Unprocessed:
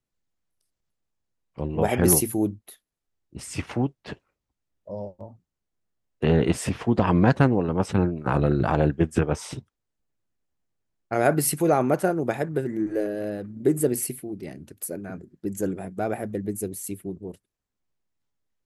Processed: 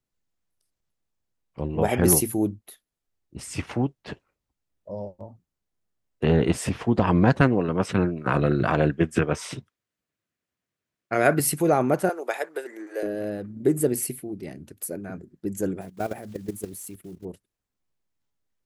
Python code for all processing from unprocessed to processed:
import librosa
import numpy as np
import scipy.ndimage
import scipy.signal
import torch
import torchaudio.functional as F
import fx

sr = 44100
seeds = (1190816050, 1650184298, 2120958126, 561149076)

y = fx.chain(x, sr, fx.highpass(hz=100.0, slope=12),
    fx.peak_eq(hz=2100.0, db=5.5, octaves=1.8),
    fx.notch(hz=840.0, q=7.0), at=(7.41, 11.4))
y = fx.chain(y, sr, fx.highpass(hz=420.0, slope=24),
    fx.tilt_shelf(db=-4.0, hz=800.0), at=(12.09, 13.03))
y = fx.chain(y, sr, fx.block_float(bits=5),
    fx.level_steps(step_db=13), at=(15.81, 17.25))